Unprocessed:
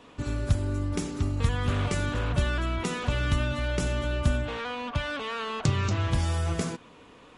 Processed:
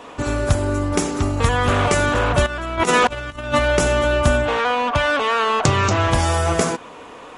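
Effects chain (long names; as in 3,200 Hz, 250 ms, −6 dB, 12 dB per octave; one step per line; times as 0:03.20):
0:02.46–0:03.59: compressor whose output falls as the input rises −32 dBFS, ratio −0.5
drawn EQ curve 170 Hz 0 dB, 730 Hz +12 dB, 4,200 Hz +4 dB, 6,300 Hz +8 dB
level +5.5 dB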